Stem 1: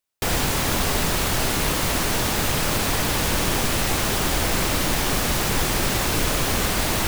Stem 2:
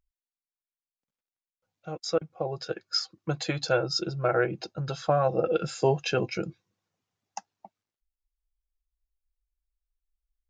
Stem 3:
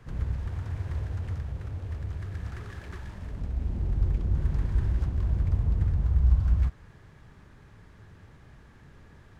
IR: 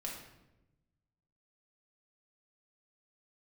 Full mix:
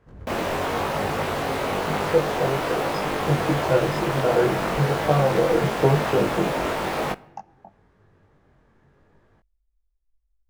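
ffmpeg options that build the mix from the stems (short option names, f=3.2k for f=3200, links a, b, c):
-filter_complex "[0:a]bass=f=250:g=-8,treble=f=4k:g=-9,flanger=delay=16:depth=5.5:speed=1.4,aeval=exprs='val(0)*sin(2*PI*150*n/s)':c=same,adelay=50,volume=1dB,asplit=2[a][b];[b]volume=-16dB[c];[1:a]aemphasis=mode=reproduction:type=riaa,volume=-6dB,asplit=3[d][e][f];[e]volume=-15.5dB[g];[2:a]volume=-9dB[h];[f]apad=whole_len=414504[i];[h][i]sidechaincompress=threshold=-45dB:ratio=8:attack=10:release=175[j];[3:a]atrim=start_sample=2205[k];[c][g]amix=inputs=2:normalize=0[l];[l][k]afir=irnorm=-1:irlink=0[m];[a][d][j][m]amix=inputs=4:normalize=0,equalizer=f=540:w=0.4:g=11,flanger=delay=20:depth=2.2:speed=0.97"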